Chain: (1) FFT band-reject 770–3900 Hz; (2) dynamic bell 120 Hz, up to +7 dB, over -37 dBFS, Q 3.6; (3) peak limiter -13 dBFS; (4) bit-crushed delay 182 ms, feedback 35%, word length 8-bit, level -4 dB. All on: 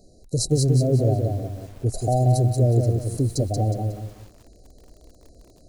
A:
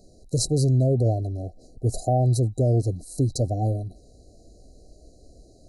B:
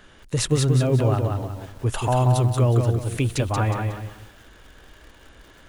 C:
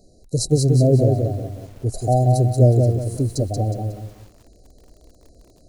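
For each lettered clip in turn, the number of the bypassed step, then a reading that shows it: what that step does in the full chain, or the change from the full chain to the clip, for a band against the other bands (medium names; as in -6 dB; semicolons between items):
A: 4, crest factor change -3.0 dB; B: 1, 1 kHz band +3.5 dB; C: 3, crest factor change +2.5 dB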